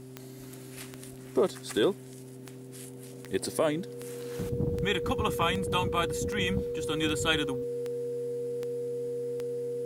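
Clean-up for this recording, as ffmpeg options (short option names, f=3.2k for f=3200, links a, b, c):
-af "adeclick=t=4,bandreject=f=129.3:t=h:w=4,bandreject=f=258.6:t=h:w=4,bandreject=f=387.9:t=h:w=4,bandreject=f=480:w=30"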